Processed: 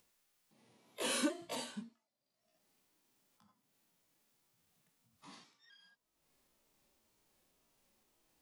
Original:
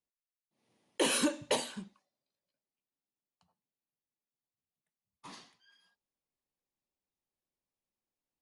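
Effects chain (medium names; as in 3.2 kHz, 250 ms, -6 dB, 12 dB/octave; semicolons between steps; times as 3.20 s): pitch shift switched off and on +2.5 st, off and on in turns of 259 ms; harmonic-percussive split percussive -16 dB; upward compressor, threshold -57 dBFS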